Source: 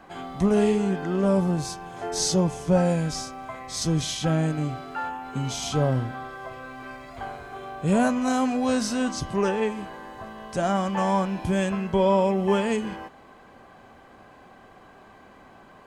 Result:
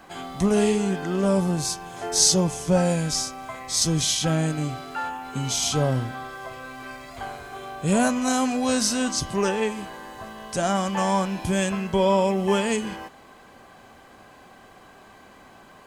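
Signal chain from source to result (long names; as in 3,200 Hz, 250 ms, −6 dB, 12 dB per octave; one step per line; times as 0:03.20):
high-shelf EQ 3,400 Hz +11 dB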